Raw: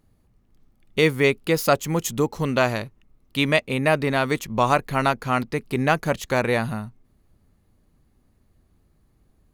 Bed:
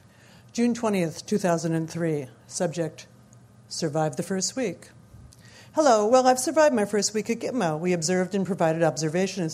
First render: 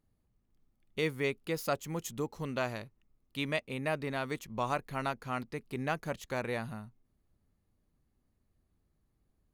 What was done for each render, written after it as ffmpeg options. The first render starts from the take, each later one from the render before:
-af "volume=0.211"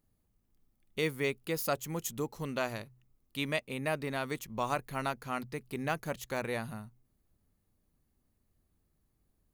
-af "highshelf=f=8900:g=10,bandreject=f=62.87:t=h:w=4,bandreject=f=125.74:t=h:w=4"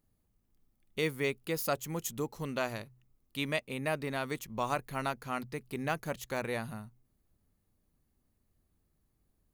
-af anull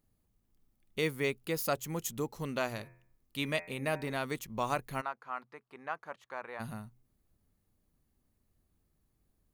-filter_complex "[0:a]asettb=1/sr,asplit=3[s0][s1][s2];[s0]atrim=end=2.704[s3];[s1]atrim=start=2.7:end=4.13,asetpts=PTS-STARTPTS,afade=t=in:d=0.004:c=qsin,afade=t=out:st=1.426:d=0.004:c=qsin,bandreject=f=86.04:t=h:w=4,bandreject=f=172.08:t=h:w=4,bandreject=f=258.12:t=h:w=4,bandreject=f=344.16:t=h:w=4,bandreject=f=430.2:t=h:w=4,bandreject=f=516.24:t=h:w=4,bandreject=f=602.28:t=h:w=4,bandreject=f=688.32:t=h:w=4,bandreject=f=774.36:t=h:w=4,bandreject=f=860.4:t=h:w=4,bandreject=f=946.44:t=h:w=4,bandreject=f=1032.48:t=h:w=4,bandreject=f=1118.52:t=h:w=4,bandreject=f=1204.56:t=h:w=4,bandreject=f=1290.6:t=h:w=4,bandreject=f=1376.64:t=h:w=4,bandreject=f=1462.68:t=h:w=4,bandreject=f=1548.72:t=h:w=4,bandreject=f=1634.76:t=h:w=4,bandreject=f=1720.8:t=h:w=4,bandreject=f=1806.84:t=h:w=4,bandreject=f=1892.88:t=h:w=4,bandreject=f=1978.92:t=h:w=4,bandreject=f=2064.96:t=h:w=4,bandreject=f=2151:t=h:w=4,bandreject=f=2237.04:t=h:w=4,bandreject=f=2323.08:t=h:w=4,bandreject=f=2409.12:t=h:w=4,bandreject=f=2495.16:t=h:w=4,bandreject=f=2581.2:t=h:w=4[s4];[s2]atrim=start=4.126[s5];[s3][s4]acrossfade=d=0.004:c1=hsin:c2=qsin[s6];[s6][s5]acrossfade=d=0.004:c1=qsin:c2=hsin,asplit=3[s7][s8][s9];[s7]afade=t=out:st=5:d=0.02[s10];[s8]bandpass=f=1100:t=q:w=1.7,afade=t=in:st=5:d=0.02,afade=t=out:st=6.59:d=0.02[s11];[s9]afade=t=in:st=6.59:d=0.02[s12];[s10][s11][s12]amix=inputs=3:normalize=0"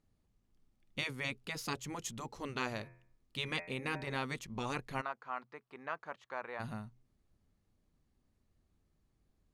-af "afftfilt=real='re*lt(hypot(re,im),0.1)':imag='im*lt(hypot(re,im),0.1)':win_size=1024:overlap=0.75,lowpass=6700"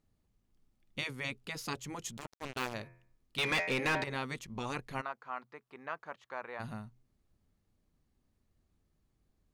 -filter_complex "[0:a]asettb=1/sr,asplit=3[s0][s1][s2];[s0]atrim=end=2.174[s3];[s1]atrim=start=2.17:end=2.74,asetpts=PTS-STARTPTS,afade=t=in:d=0.004:c=qsin,afade=t=out:st=0.566:d=0.004:c=qsin,acrusher=bits=5:mix=0:aa=0.5[s4];[s2]atrim=start=2.736[s5];[s3][s4]acrossfade=d=0.004:c1=hsin:c2=qsin[s6];[s6][s5]acrossfade=d=0.004:c1=qsin:c2=hsin,asettb=1/sr,asplit=3[s7][s8][s9];[s7]atrim=end=3.384[s10];[s8]atrim=start=3.38:end=4.04,asetpts=PTS-STARTPTS,afade=t=in:d=0.004:c=qsin,afade=t=out:st=0.656:d=0.004:c=qsin,asplit=2[s11][s12];[s12]highpass=f=720:p=1,volume=14.1,asoftclip=type=tanh:threshold=0.0794[s13];[s11][s13]amix=inputs=2:normalize=0,lowpass=f=4300:p=1,volume=0.501[s14];[s9]atrim=start=4.036[s15];[s10][s14]acrossfade=d=0.004:c1=hsin:c2=qsin[s16];[s16][s15]acrossfade=d=0.004:c1=qsin:c2=hsin"

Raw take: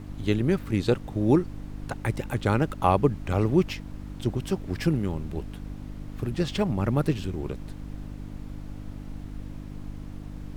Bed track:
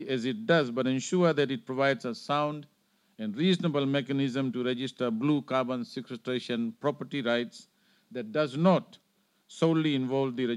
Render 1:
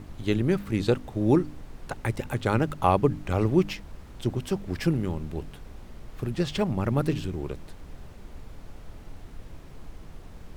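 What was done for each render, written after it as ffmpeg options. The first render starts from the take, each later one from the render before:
-af "bandreject=f=50:t=h:w=4,bandreject=f=100:t=h:w=4,bandreject=f=150:t=h:w=4,bandreject=f=200:t=h:w=4,bandreject=f=250:t=h:w=4,bandreject=f=300:t=h:w=4"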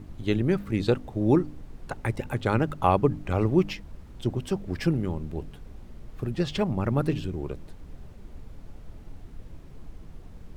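-af "afftdn=nr=6:nf=-46"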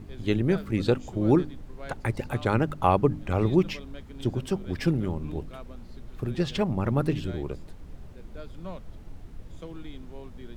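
-filter_complex "[1:a]volume=0.141[s0];[0:a][s0]amix=inputs=2:normalize=0"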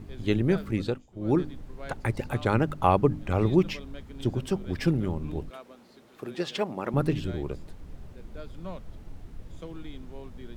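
-filter_complex "[0:a]asettb=1/sr,asplit=3[s0][s1][s2];[s0]atrim=end=5.504[s3];[s1]atrim=start=5.5:end=6.94,asetpts=PTS-STARTPTS,afade=t=in:d=0.004:c=qsin,afade=t=out:st=1.436:d=0.004:c=qsin,highpass=320[s4];[s2]atrim=start=6.936[s5];[s3][s4]acrossfade=d=0.004:c1=hsin:c2=qsin[s6];[s6][s5]acrossfade=d=0.004:c1=qsin:c2=hsin,asplit=3[s7][s8][s9];[s7]atrim=end=1.07,asetpts=PTS-STARTPTS,afade=t=out:st=0.69:d=0.38:silence=0.0707946[s10];[s8]atrim=start=1.07:end=1.09,asetpts=PTS-STARTPTS,volume=0.0708[s11];[s9]atrim=start=1.09,asetpts=PTS-STARTPTS,afade=t=in:d=0.38:silence=0.0707946[s12];[s10][s11][s12]concat=n=3:v=0:a=1"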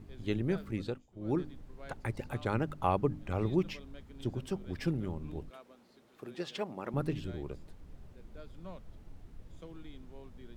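-af "volume=0.398"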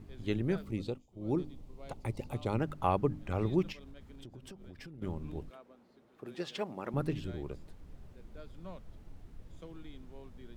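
-filter_complex "[0:a]asettb=1/sr,asplit=3[s0][s1][s2];[s0]atrim=end=0.624[s3];[s1]atrim=start=0.62:end=2.59,asetpts=PTS-STARTPTS,afade=t=in:d=0.004:c=qsin,afade=t=out:st=1.966:d=0.004:c=qsin,equalizer=f=1600:t=o:w=0.49:g=-14.5[s4];[s2]atrim=start=2.586[s5];[s3][s4]acrossfade=d=0.004:c1=hsin:c2=qsin[s6];[s6][s5]acrossfade=d=0.004:c1=qsin:c2=hsin,asettb=1/sr,asplit=3[s7][s8][s9];[s7]atrim=end=3.724[s10];[s8]atrim=start=3.72:end=5.02,asetpts=PTS-STARTPTS,afade=t=in:d=0.004:c=qsin,afade=t=out:st=1.296:d=0.004:c=qsin,acompressor=threshold=0.00562:ratio=12:attack=3.2:release=140:knee=1:detection=peak[s11];[s9]atrim=start=5.016[s12];[s10][s11]acrossfade=d=0.004:c1=hsin:c2=qsin[s13];[s13][s12]acrossfade=d=0.004:c1=qsin:c2=hsin,asplit=3[s14][s15][s16];[s14]afade=t=out:st=5.53:d=0.02[s17];[s15]highshelf=f=2300:g=-10.5,afade=t=in:st=5.53:d=0.02,afade=t=out:st=6.25:d=0.02[s18];[s16]afade=t=in:st=6.25:d=0.02[s19];[s17][s18][s19]amix=inputs=3:normalize=0"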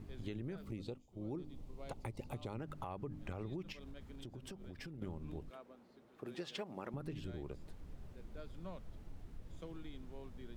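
-af "alimiter=level_in=1.26:limit=0.0631:level=0:latency=1:release=89,volume=0.794,acompressor=threshold=0.00891:ratio=4"

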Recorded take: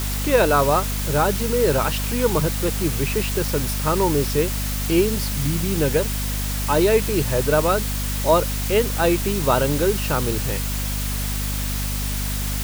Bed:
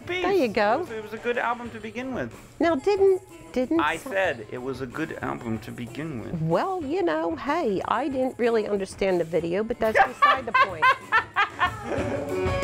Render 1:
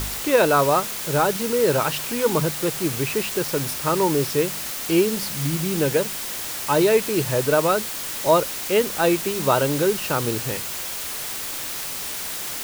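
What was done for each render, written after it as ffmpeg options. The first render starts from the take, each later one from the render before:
-af "bandreject=f=50:t=h:w=4,bandreject=f=100:t=h:w=4,bandreject=f=150:t=h:w=4,bandreject=f=200:t=h:w=4,bandreject=f=250:t=h:w=4"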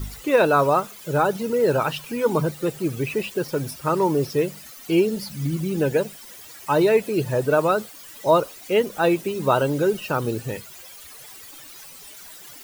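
-af "afftdn=nr=16:nf=-30"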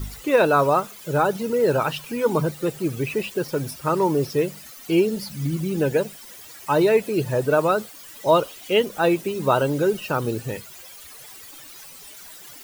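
-filter_complex "[0:a]asettb=1/sr,asplit=3[s0][s1][s2];[s0]atrim=end=8.284[s3];[s1]atrim=start=8.28:end=8.85,asetpts=PTS-STARTPTS,afade=t=in:d=0.004:c=qsin,afade=t=out:st=0.566:d=0.004:c=qsin,equalizer=f=3100:t=o:w=0.37:g=9[s4];[s2]atrim=start=8.846[s5];[s3][s4]acrossfade=d=0.004:c1=hsin:c2=qsin[s6];[s6][s5]acrossfade=d=0.004:c1=qsin:c2=hsin"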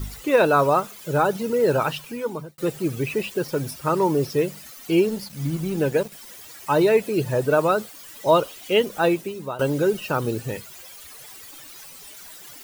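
-filter_complex "[0:a]asettb=1/sr,asplit=3[s0][s1][s2];[s0]atrim=end=5.044[s3];[s1]atrim=start=5.04:end=6.12,asetpts=PTS-STARTPTS,afade=t=in:d=0.004:c=qsin,afade=t=out:st=1.076:d=0.004:c=qsin,aeval=exprs='sgn(val(0))*max(abs(val(0))-0.00794,0)':c=same[s4];[s2]atrim=start=6.116[s5];[s3][s4]acrossfade=d=0.004:c1=hsin:c2=qsin[s6];[s6][s5]acrossfade=d=0.004:c1=qsin:c2=hsin,asplit=3[s7][s8][s9];[s7]atrim=end=2.58,asetpts=PTS-STARTPTS,afade=t=out:st=1.88:d=0.7[s10];[s8]atrim=start=2.58:end=9.59,asetpts=PTS-STARTPTS,afade=t=in:d=0.004:c=hsin,afade=t=out:st=6.46:d=0.55:silence=0.133352[s11];[s9]atrim=start=9.59,asetpts=PTS-STARTPTS,afade=t=in:d=0.004:c=hsin:silence=0.133352[s12];[s10][s11][s12]concat=n=3:v=0:a=1"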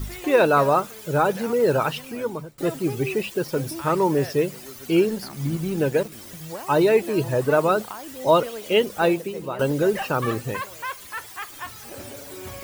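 -filter_complex "[1:a]volume=0.237[s0];[0:a][s0]amix=inputs=2:normalize=0"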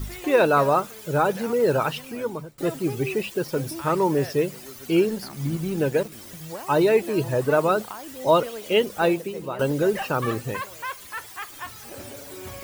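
-af "volume=0.891"

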